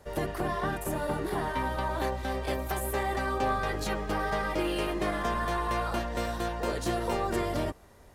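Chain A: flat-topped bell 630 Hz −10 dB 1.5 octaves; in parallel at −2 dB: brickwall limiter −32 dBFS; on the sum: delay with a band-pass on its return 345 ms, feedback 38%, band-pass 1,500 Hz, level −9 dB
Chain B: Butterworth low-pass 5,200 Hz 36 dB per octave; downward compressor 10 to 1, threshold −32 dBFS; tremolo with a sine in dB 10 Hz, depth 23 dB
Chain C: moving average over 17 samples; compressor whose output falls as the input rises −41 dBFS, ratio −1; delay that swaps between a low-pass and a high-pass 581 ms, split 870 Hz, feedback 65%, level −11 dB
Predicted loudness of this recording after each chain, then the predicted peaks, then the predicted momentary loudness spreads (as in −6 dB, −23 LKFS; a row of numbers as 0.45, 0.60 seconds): −31.0, −42.5, −41.5 LKFS; −17.5, −21.5, −22.0 dBFS; 3, 2, 3 LU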